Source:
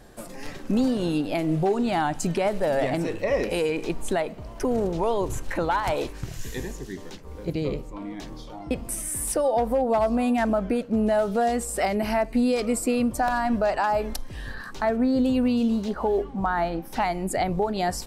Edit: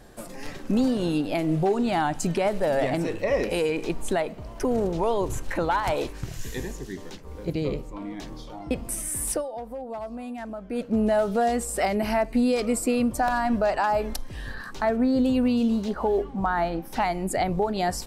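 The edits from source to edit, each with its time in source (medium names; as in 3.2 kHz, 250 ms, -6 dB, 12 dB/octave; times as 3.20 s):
9.33–10.82 s: dip -12.5 dB, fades 0.13 s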